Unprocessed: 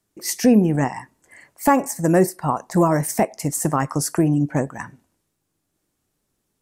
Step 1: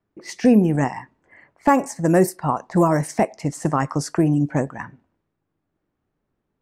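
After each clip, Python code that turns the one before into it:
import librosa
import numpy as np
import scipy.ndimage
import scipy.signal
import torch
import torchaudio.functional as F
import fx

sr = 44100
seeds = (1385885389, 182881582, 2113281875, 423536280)

y = fx.env_lowpass(x, sr, base_hz=1800.0, full_db=-12.5)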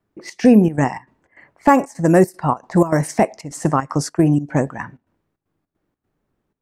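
y = fx.step_gate(x, sr, bpm=154, pattern='xxx.xxx.xx.xx.xx', floor_db=-12.0, edge_ms=4.5)
y = y * 10.0 ** (3.5 / 20.0)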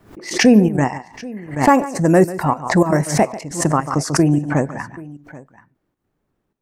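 y = fx.echo_multitap(x, sr, ms=(142, 782), db=(-16.0, -20.0))
y = fx.pre_swell(y, sr, db_per_s=120.0)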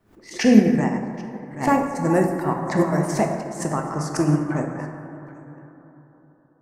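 y = fx.rev_plate(x, sr, seeds[0], rt60_s=3.8, hf_ratio=0.25, predelay_ms=0, drr_db=1.0)
y = fx.upward_expand(y, sr, threshold_db=-22.0, expansion=1.5)
y = y * 10.0 ** (-4.0 / 20.0)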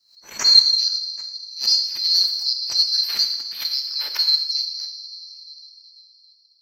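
y = fx.band_swap(x, sr, width_hz=4000)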